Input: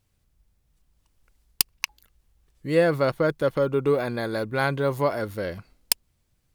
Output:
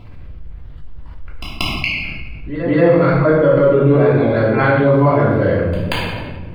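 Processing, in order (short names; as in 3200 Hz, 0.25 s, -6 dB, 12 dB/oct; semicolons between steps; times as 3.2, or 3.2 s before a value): random spectral dropouts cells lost 21%; air absorption 410 m; pre-echo 0.183 s -18 dB; shoebox room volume 430 m³, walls mixed, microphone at 3 m; fast leveller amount 50%; gain +2 dB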